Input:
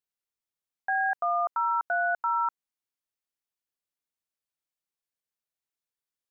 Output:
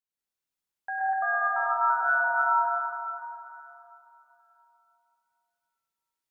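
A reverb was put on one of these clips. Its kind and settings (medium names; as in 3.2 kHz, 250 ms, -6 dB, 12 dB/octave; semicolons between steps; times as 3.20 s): plate-style reverb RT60 3.1 s, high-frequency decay 0.9×, pre-delay 90 ms, DRR -8.5 dB; trim -6 dB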